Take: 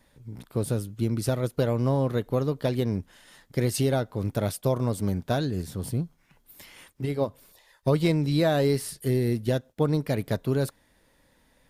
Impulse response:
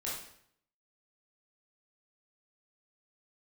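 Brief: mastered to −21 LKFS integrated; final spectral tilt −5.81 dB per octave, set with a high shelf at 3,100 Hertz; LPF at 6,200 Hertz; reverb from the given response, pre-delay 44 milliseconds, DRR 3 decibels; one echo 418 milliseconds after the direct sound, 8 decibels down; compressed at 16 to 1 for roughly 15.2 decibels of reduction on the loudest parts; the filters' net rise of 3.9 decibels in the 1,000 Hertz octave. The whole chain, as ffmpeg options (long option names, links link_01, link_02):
-filter_complex "[0:a]lowpass=6200,equalizer=frequency=1000:width_type=o:gain=4.5,highshelf=frequency=3100:gain=8,acompressor=threshold=-33dB:ratio=16,aecho=1:1:418:0.398,asplit=2[link_01][link_02];[1:a]atrim=start_sample=2205,adelay=44[link_03];[link_02][link_03]afir=irnorm=-1:irlink=0,volume=-5.5dB[link_04];[link_01][link_04]amix=inputs=2:normalize=0,volume=16dB"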